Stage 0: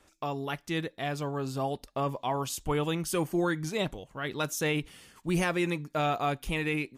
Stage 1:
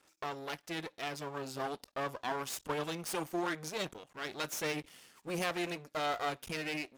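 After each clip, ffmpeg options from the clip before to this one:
-af "aeval=exprs='max(val(0),0)':c=same,highpass=f=280:p=1,equalizer=f=5300:t=o:w=0.34:g=2"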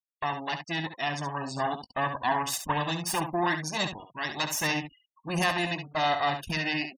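-filter_complex "[0:a]afftfilt=real='re*gte(hypot(re,im),0.00562)':imag='im*gte(hypot(re,im),0.00562)':win_size=1024:overlap=0.75,aecho=1:1:1.1:0.71,asplit=2[s0][s1];[s1]aecho=0:1:19|69:0.133|0.376[s2];[s0][s2]amix=inputs=2:normalize=0,volume=2.24"

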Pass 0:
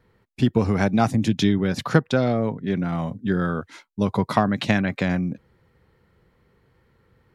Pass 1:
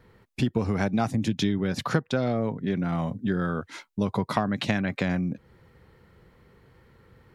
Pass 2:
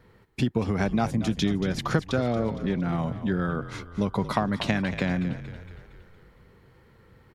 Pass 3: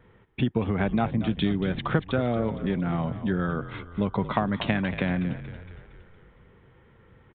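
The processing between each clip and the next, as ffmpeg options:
-af "acompressor=threshold=0.0178:ratio=2,volume=1.78"
-filter_complex "[0:a]asplit=7[s0][s1][s2][s3][s4][s5][s6];[s1]adelay=231,afreqshift=-46,volume=0.237[s7];[s2]adelay=462,afreqshift=-92,volume=0.127[s8];[s3]adelay=693,afreqshift=-138,volume=0.0692[s9];[s4]adelay=924,afreqshift=-184,volume=0.0372[s10];[s5]adelay=1155,afreqshift=-230,volume=0.0202[s11];[s6]adelay=1386,afreqshift=-276,volume=0.0108[s12];[s0][s7][s8][s9][s10][s11][s12]amix=inputs=7:normalize=0"
-af "aresample=8000,aresample=44100"

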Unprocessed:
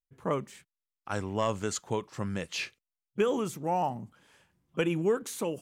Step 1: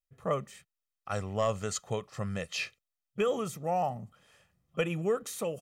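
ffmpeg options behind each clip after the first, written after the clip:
-af "aecho=1:1:1.6:0.59,volume=0.794"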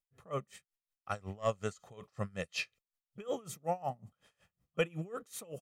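-af "aeval=exprs='val(0)*pow(10,-25*(0.5-0.5*cos(2*PI*5.4*n/s))/20)':c=same"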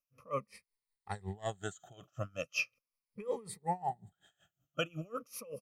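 -af "afftfilt=real='re*pow(10,18/40*sin(2*PI*(0.9*log(max(b,1)*sr/1024/100)/log(2)-(-0.39)*(pts-256)/sr)))':imag='im*pow(10,18/40*sin(2*PI*(0.9*log(max(b,1)*sr/1024/100)/log(2)-(-0.39)*(pts-256)/sr)))':win_size=1024:overlap=0.75,volume=0.631"

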